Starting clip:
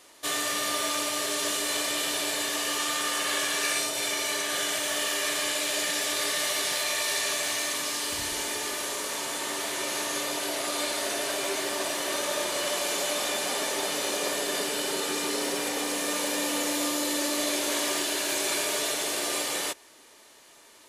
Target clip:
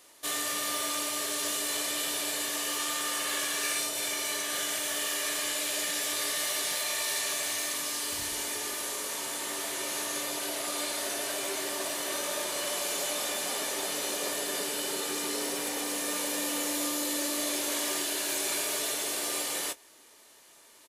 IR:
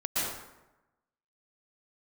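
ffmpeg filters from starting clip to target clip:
-filter_complex "[0:a]highshelf=frequency=10000:gain=9,asplit=2[link_01][link_02];[link_02]asoftclip=type=tanh:threshold=-19dB,volume=-6.5dB[link_03];[link_01][link_03]amix=inputs=2:normalize=0,asplit=2[link_04][link_05];[link_05]adelay=21,volume=-13dB[link_06];[link_04][link_06]amix=inputs=2:normalize=0,volume=-8dB"

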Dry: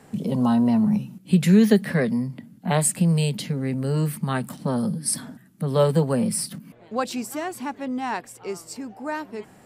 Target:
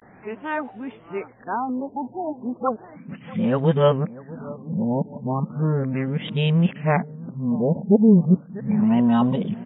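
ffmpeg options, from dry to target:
ffmpeg -i in.wav -filter_complex "[0:a]areverse,aeval=exprs='val(0)+0.0141*sin(2*PI*4900*n/s)':channel_layout=same,equalizer=frequency=2600:width=0.38:gain=3.5,asplit=2[link_01][link_02];[link_02]adelay=643,lowpass=frequency=1400:poles=1,volume=-18.5dB,asplit=2[link_03][link_04];[link_04]adelay=643,lowpass=frequency=1400:poles=1,volume=0.48,asplit=2[link_05][link_06];[link_06]adelay=643,lowpass=frequency=1400:poles=1,volume=0.48,asplit=2[link_07][link_08];[link_08]adelay=643,lowpass=frequency=1400:poles=1,volume=0.48[link_09];[link_03][link_05][link_07][link_09]amix=inputs=4:normalize=0[link_10];[link_01][link_10]amix=inputs=2:normalize=0,afftfilt=real='re*lt(b*sr/1024,950*pow(3900/950,0.5+0.5*sin(2*PI*0.35*pts/sr)))':imag='im*lt(b*sr/1024,950*pow(3900/950,0.5+0.5*sin(2*PI*0.35*pts/sr)))':win_size=1024:overlap=0.75,volume=1dB" out.wav

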